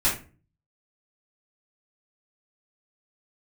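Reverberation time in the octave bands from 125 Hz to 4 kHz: 0.70, 0.55, 0.40, 0.30, 0.30, 0.25 seconds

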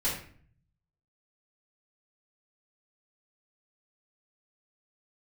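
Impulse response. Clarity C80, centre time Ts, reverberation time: 8.5 dB, 38 ms, 0.50 s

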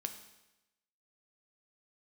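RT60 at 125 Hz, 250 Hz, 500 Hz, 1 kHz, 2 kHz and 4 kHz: 0.95, 0.95, 0.95, 0.95, 0.95, 0.95 seconds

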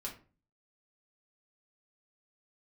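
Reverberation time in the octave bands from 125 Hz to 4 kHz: 0.60, 0.50, 0.40, 0.35, 0.30, 0.25 seconds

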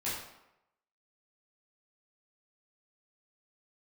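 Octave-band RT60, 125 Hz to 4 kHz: 0.70, 0.80, 0.90, 0.90, 0.75, 0.60 seconds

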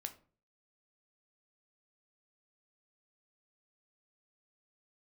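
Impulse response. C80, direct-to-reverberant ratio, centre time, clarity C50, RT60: 19.5 dB, 6.5 dB, 7 ms, 14.5 dB, 0.40 s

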